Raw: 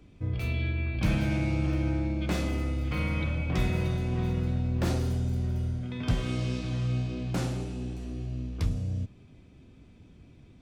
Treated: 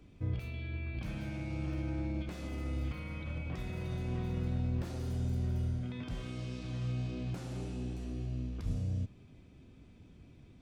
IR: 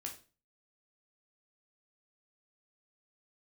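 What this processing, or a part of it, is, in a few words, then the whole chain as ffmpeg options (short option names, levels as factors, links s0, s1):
de-esser from a sidechain: -filter_complex "[0:a]asplit=2[s0][s1];[s1]highpass=f=4900:p=1,apad=whole_len=468044[s2];[s0][s2]sidechaincompress=threshold=0.00282:ratio=6:attack=1.1:release=70,volume=0.708"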